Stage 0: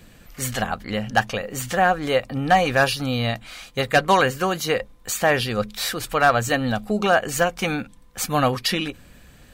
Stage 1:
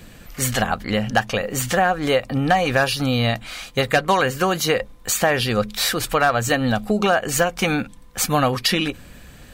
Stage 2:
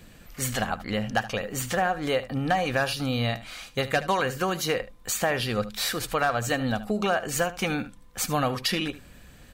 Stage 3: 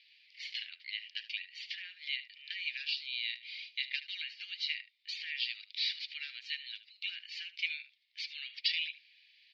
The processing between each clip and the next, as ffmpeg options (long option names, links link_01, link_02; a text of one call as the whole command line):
ffmpeg -i in.wav -af "acompressor=threshold=-21dB:ratio=3,volume=5.5dB" out.wav
ffmpeg -i in.wav -af "aecho=1:1:75:0.168,volume=-7dB" out.wav
ffmpeg -i in.wav -af "asuperpass=centerf=3200:order=12:qfactor=1.1,volume=-2.5dB" out.wav